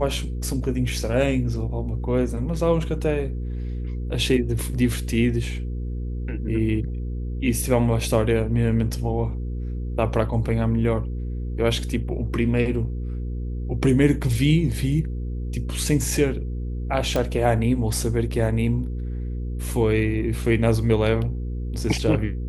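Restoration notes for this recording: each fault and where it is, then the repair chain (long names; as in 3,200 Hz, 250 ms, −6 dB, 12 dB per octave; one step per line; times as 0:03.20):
mains hum 60 Hz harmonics 8 −28 dBFS
0:17.16: click −10 dBFS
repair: click removal
hum removal 60 Hz, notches 8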